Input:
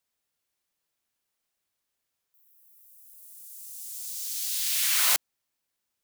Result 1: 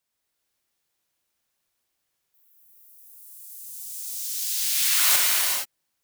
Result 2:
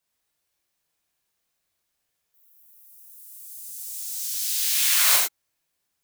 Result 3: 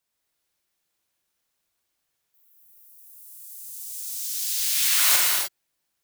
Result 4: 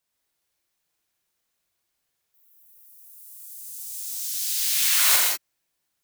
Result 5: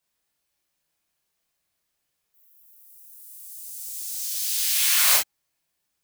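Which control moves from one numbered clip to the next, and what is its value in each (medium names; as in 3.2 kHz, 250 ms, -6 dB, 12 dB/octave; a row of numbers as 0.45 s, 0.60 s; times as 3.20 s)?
gated-style reverb, gate: 500 ms, 130 ms, 330 ms, 220 ms, 80 ms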